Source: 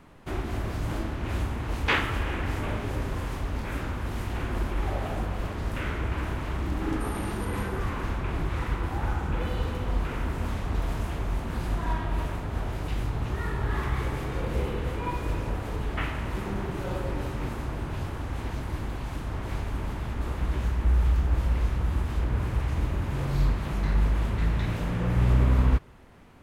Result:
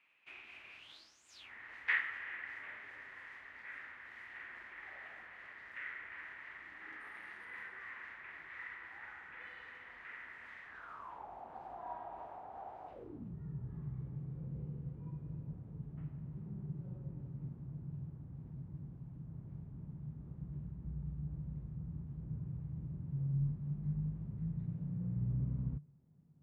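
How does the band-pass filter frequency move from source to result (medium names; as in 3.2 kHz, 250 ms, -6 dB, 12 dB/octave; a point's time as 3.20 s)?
band-pass filter, Q 8
0.77 s 2.5 kHz
1.27 s 8 kHz
1.51 s 1.9 kHz
10.66 s 1.9 kHz
11.29 s 770 Hz
12.87 s 770 Hz
13.34 s 150 Hz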